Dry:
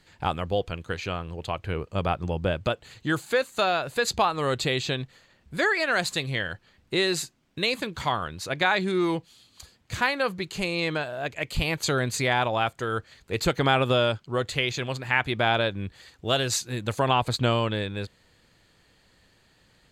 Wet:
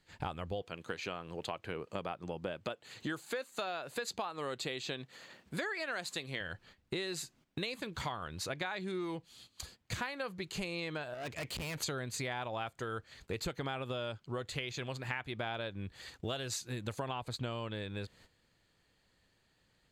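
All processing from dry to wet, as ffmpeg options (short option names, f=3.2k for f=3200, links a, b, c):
-filter_complex "[0:a]asettb=1/sr,asplit=3[a][b][c];[a]atrim=end=0.624[d];[b]atrim=start=0.62:end=6.41,asetpts=PTS-STARTPTS,afade=t=in:d=0.004:c=qsin,afade=t=out:st=5.786:d=0.004:c=qsin,highpass=190,acompressor=mode=upward:threshold=-46dB:ratio=2.5:attack=3.2:release=140:knee=2.83:detection=peak[e];[c]atrim=start=6.406[f];[d][e]acrossfade=d=0.004:c1=hsin:c2=qsin[g];[g][f]acrossfade=d=0.004:c1=qsin:c2=hsin,asettb=1/sr,asplit=3[h][i][j];[h]atrim=end=11.144[k];[i]atrim=start=11.14:end=11.78,asetpts=PTS-STARTPTS,afade=t=in:d=0.004:c=qsin,afade=t=out:st=0.636:d=0.004:c=qsin,aeval=exprs='(tanh(63.1*val(0)+0.55)-tanh(0.55))/63.1':c=same,highpass=56[l];[j]atrim=start=11.776[m];[k][l]acrossfade=d=0.004:c1=hsin:c2=qsin[n];[n][m]acrossfade=d=0.004:c1=qsin:c2=hsin,agate=range=-13dB:threshold=-55dB:ratio=16:detection=peak,acompressor=threshold=-38dB:ratio=6,volume=1.5dB"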